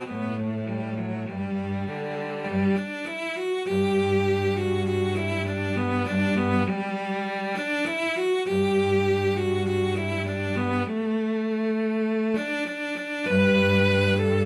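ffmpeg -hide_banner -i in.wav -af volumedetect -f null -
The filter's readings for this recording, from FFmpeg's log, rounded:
mean_volume: -24.8 dB
max_volume: -9.8 dB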